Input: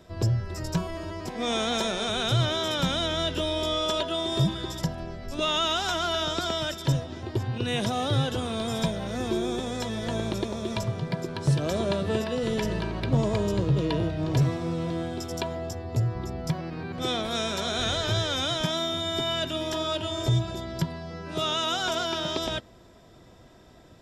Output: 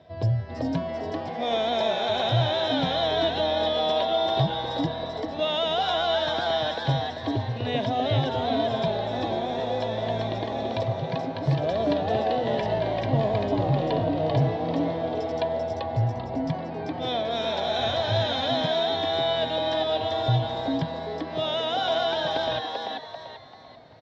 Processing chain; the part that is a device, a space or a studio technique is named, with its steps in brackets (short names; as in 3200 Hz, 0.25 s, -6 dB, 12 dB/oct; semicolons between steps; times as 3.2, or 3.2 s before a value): frequency-shifting delay pedal into a guitar cabinet (frequency-shifting echo 0.39 s, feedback 37%, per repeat +150 Hz, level -3 dB; speaker cabinet 100–4100 Hz, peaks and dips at 110 Hz +4 dB, 200 Hz -7 dB, 360 Hz -8 dB, 680 Hz +8 dB, 1300 Hz -9 dB, 2600 Hz -4 dB)